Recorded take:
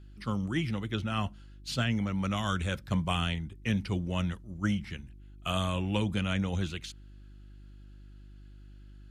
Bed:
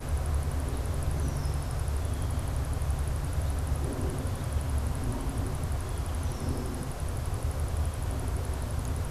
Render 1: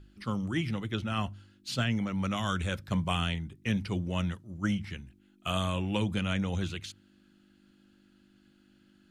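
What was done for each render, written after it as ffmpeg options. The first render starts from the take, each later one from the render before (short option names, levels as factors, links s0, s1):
-af "bandreject=f=50:t=h:w=4,bandreject=f=100:t=h:w=4,bandreject=f=150:t=h:w=4"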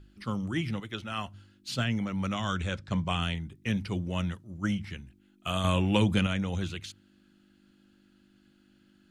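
-filter_complex "[0:a]asettb=1/sr,asplit=3[s0][s1][s2];[s0]atrim=end=0.804[s3];[s1]atrim=start=0.8:end=1.34,asetpts=PTS-STARTPTS,afade=t=in:d=0.004:c=qsin,afade=t=out:st=0.536:d=0.004:c=qsin,lowshelf=f=360:g=-9[s4];[s2]atrim=start=1.336[s5];[s3][s4]acrossfade=d=0.004:c1=hsin:c2=qsin[s6];[s6][s5]acrossfade=d=0.004:c1=qsin:c2=hsin,asettb=1/sr,asplit=3[s7][s8][s9];[s7]atrim=end=2.344[s10];[s8]atrim=start=2.34:end=3.22,asetpts=PTS-STARTPTS,afade=t=in:d=0.004:c=qsin,afade=t=out:st=0.876:d=0.004:c=qsin,lowpass=f=7800:w=0.5412,lowpass=f=7800:w=1.3066[s11];[s9]atrim=start=3.216[s12];[s10][s11]acrossfade=d=0.004:c1=hsin:c2=qsin[s13];[s13][s12]acrossfade=d=0.004:c1=qsin:c2=hsin,asettb=1/sr,asplit=3[s14][s15][s16];[s14]atrim=end=5.644[s17];[s15]atrim=start=5.64:end=6.27,asetpts=PTS-STARTPTS,afade=t=in:d=0.004:c=qsin,afade=t=out:st=0.626:d=0.004:c=qsin,acontrast=40[s18];[s16]atrim=start=6.266[s19];[s17][s18]acrossfade=d=0.004:c1=hsin:c2=qsin[s20];[s20][s19]acrossfade=d=0.004:c1=qsin:c2=hsin"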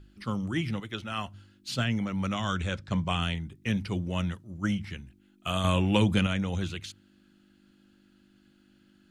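-af "volume=1.12"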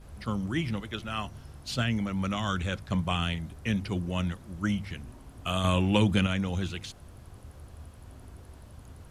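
-filter_complex "[1:a]volume=0.15[s0];[0:a][s0]amix=inputs=2:normalize=0"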